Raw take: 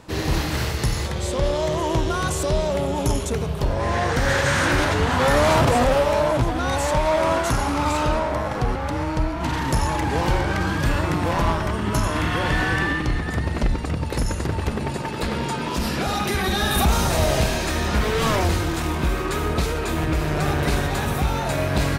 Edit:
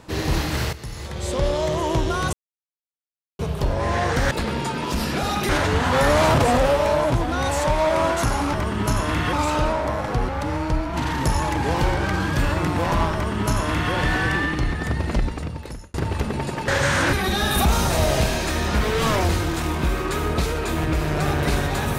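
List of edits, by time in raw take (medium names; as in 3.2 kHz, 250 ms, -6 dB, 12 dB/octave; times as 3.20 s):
0.73–1.32 s: fade in quadratic, from -13 dB
2.33–3.39 s: mute
4.31–4.76 s: swap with 15.15–16.33 s
11.60–12.40 s: copy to 7.80 s
13.62–14.41 s: fade out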